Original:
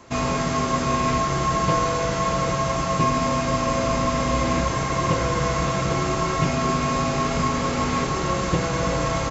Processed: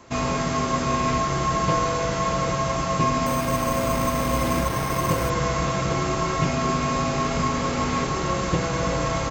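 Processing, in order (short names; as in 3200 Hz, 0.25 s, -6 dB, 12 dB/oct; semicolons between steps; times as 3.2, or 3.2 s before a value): 3.26–5.3 careless resampling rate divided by 6×, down none, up hold; gain -1 dB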